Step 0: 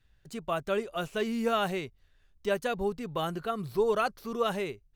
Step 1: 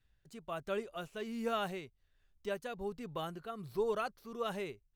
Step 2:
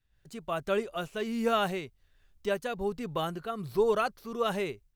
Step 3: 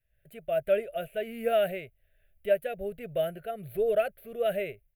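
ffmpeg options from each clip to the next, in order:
-af "tremolo=f=1.3:d=0.4,volume=0.447"
-af "dynaudnorm=f=100:g=3:m=3.76,volume=0.668"
-af "firequalizer=gain_entry='entry(140,0);entry(270,-9);entry(640,13);entry(920,-30);entry(1500,0);entry(2400,4);entry(5500,-26);entry(11000,8)':delay=0.05:min_phase=1,volume=0.75"

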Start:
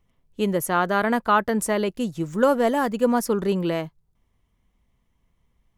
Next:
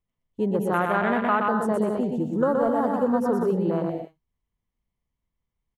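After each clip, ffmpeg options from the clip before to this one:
-af "aecho=1:1:120|198|248.7|281.7|303.1:0.631|0.398|0.251|0.158|0.1,afwtdn=0.0631,acompressor=threshold=0.0891:ratio=2"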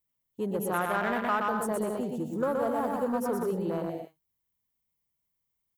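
-filter_complex "[0:a]aemphasis=mode=production:type=bsi,asplit=2[s0][s1];[s1]asoftclip=type=hard:threshold=0.0473,volume=0.335[s2];[s0][s2]amix=inputs=2:normalize=0,equalizer=f=99:w=0.92:g=7,volume=0.473"

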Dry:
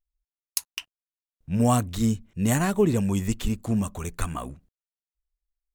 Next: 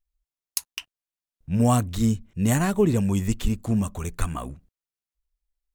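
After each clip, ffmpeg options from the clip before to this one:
-af "lowshelf=f=140:g=4"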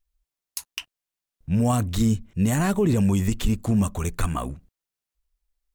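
-af "alimiter=limit=0.15:level=0:latency=1:release=24,volume=1.58"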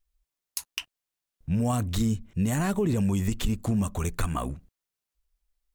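-af "acompressor=threshold=0.0562:ratio=2"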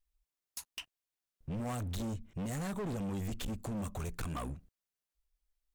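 -af "volume=29.9,asoftclip=hard,volume=0.0335,volume=0.531"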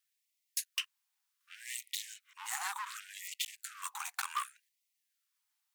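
-af "afftfilt=real='re*gte(b*sr/1024,730*pow(1900/730,0.5+0.5*sin(2*PI*0.67*pts/sr)))':imag='im*gte(b*sr/1024,730*pow(1900/730,0.5+0.5*sin(2*PI*0.67*pts/sr)))':win_size=1024:overlap=0.75,volume=2.66"

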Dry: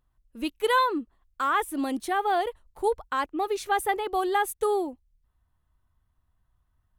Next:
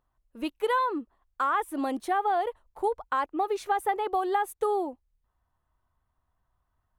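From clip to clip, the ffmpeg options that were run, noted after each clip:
-af "equalizer=f=790:t=o:w=2.6:g=10.5,acompressor=threshold=0.158:ratio=6,volume=0.473"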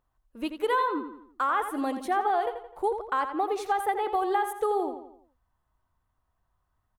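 -filter_complex "[0:a]asplit=2[s0][s1];[s1]adelay=85,lowpass=f=4800:p=1,volume=0.376,asplit=2[s2][s3];[s3]adelay=85,lowpass=f=4800:p=1,volume=0.45,asplit=2[s4][s5];[s5]adelay=85,lowpass=f=4800:p=1,volume=0.45,asplit=2[s6][s7];[s7]adelay=85,lowpass=f=4800:p=1,volume=0.45,asplit=2[s8][s9];[s9]adelay=85,lowpass=f=4800:p=1,volume=0.45[s10];[s0][s2][s4][s6][s8][s10]amix=inputs=6:normalize=0"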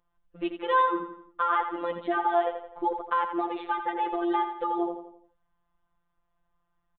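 -af "aresample=8000,aresample=44100,afftfilt=real='hypot(re,im)*cos(PI*b)':imag='0':win_size=1024:overlap=0.75,volume=1.68"

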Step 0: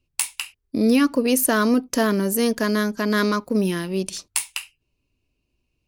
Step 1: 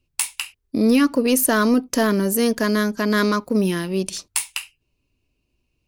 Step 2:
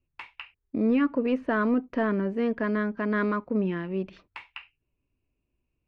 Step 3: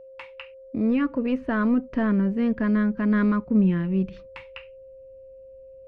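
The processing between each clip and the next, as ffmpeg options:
-af "asoftclip=type=tanh:threshold=0.422,volume=1.26"
-af "lowpass=f=2400:w=0.5412,lowpass=f=2400:w=1.3066,volume=0.447"
-af "asubboost=boost=7.5:cutoff=190,aeval=exprs='val(0)+0.00708*sin(2*PI*530*n/s)':c=same"

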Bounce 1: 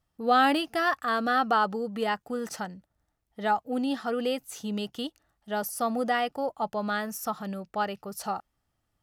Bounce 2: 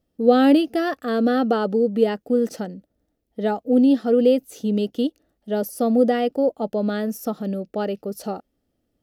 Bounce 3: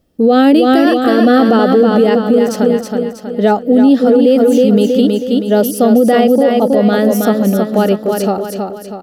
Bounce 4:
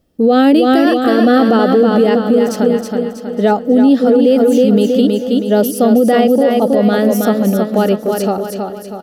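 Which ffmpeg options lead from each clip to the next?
-af "equalizer=f=125:t=o:w=1:g=-4,equalizer=f=250:t=o:w=1:g=10,equalizer=f=500:t=o:w=1:g=11,equalizer=f=1000:t=o:w=1:g=-12,equalizer=f=2000:t=o:w=1:g=-3,equalizer=f=8000:t=o:w=1:g=-5,volume=1.33"
-filter_complex "[0:a]asplit=2[s0][s1];[s1]aecho=0:1:321|642|963|1284|1605|1926:0.562|0.259|0.119|0.0547|0.0252|0.0116[s2];[s0][s2]amix=inputs=2:normalize=0,alimiter=level_in=4.73:limit=0.891:release=50:level=0:latency=1,volume=0.891"
-af "aecho=1:1:864|1728:0.0891|0.0285,volume=0.891"

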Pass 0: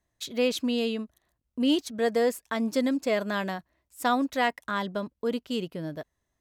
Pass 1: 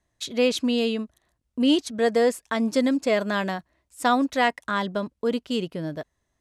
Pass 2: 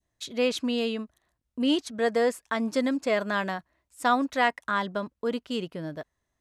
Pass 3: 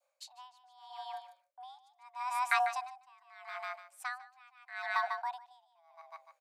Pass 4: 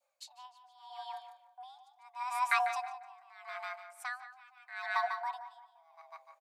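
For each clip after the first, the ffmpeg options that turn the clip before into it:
-af "lowpass=f=11000:w=0.5412,lowpass=f=11000:w=1.3066,volume=1.58"
-af "adynamicequalizer=threshold=0.0141:dfrequency=1300:dqfactor=0.77:tfrequency=1300:tqfactor=0.77:attack=5:release=100:ratio=0.375:range=2.5:mode=boostabove:tftype=bell,volume=0.562"
-filter_complex "[0:a]afreqshift=500,asplit=2[s0][s1];[s1]aecho=0:1:148|296|444:0.501|0.0752|0.0113[s2];[s0][s2]amix=inputs=2:normalize=0,aeval=exprs='val(0)*pow(10,-37*(0.5-0.5*cos(2*PI*0.79*n/s))/20)':c=same"
-filter_complex "[0:a]flanger=delay=2.1:depth=2.3:regen=59:speed=0.9:shape=triangular,asplit=2[s0][s1];[s1]adelay=174,lowpass=f=2000:p=1,volume=0.282,asplit=2[s2][s3];[s3]adelay=174,lowpass=f=2000:p=1,volume=0.38,asplit=2[s4][s5];[s5]adelay=174,lowpass=f=2000:p=1,volume=0.38,asplit=2[s6][s7];[s7]adelay=174,lowpass=f=2000:p=1,volume=0.38[s8];[s0][s2][s4][s6][s8]amix=inputs=5:normalize=0,volume=1.58"

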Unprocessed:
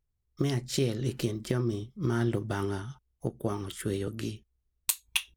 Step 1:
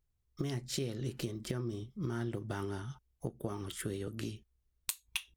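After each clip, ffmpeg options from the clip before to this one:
-af "acompressor=threshold=0.0141:ratio=2.5"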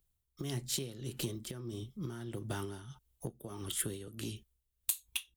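-filter_complex "[0:a]tremolo=f=1.6:d=0.64,acrossover=split=160[s0][s1];[s1]asoftclip=type=tanh:threshold=0.0335[s2];[s0][s2]amix=inputs=2:normalize=0,aexciter=amount=2.2:drive=2.8:freq=2900,volume=1.12"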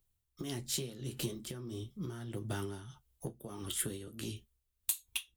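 -af "flanger=delay=9.5:depth=4.6:regen=-46:speed=0.4:shape=sinusoidal,volume=1.58"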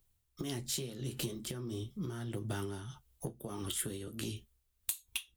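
-af "acompressor=threshold=0.00794:ratio=2,volume=1.68"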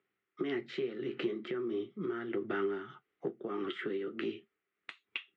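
-af "highpass=f=210:w=0.5412,highpass=f=210:w=1.3066,equalizer=f=240:t=q:w=4:g=-4,equalizer=f=380:t=q:w=4:g=8,equalizer=f=600:t=q:w=4:g=-5,equalizer=f=940:t=q:w=4:g=-8,equalizer=f=1300:t=q:w=4:g=7,equalizer=f=2000:t=q:w=4:g=8,lowpass=f=2600:w=0.5412,lowpass=f=2600:w=1.3066,volume=1.58"

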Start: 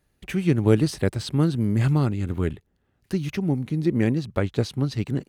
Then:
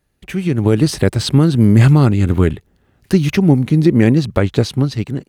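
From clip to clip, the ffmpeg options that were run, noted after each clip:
-af "alimiter=limit=0.2:level=0:latency=1:release=198,dynaudnorm=f=130:g=9:m=3.98,volume=1.26"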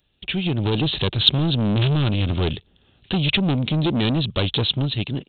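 -af "aresample=8000,asoftclip=type=tanh:threshold=0.188,aresample=44100,aexciter=amount=11.5:drive=3.1:freq=2900,volume=0.75"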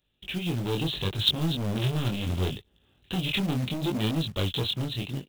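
-af "flanger=delay=18.5:depth=6.6:speed=0.72,acrusher=bits=4:mode=log:mix=0:aa=0.000001,volume=0.596"

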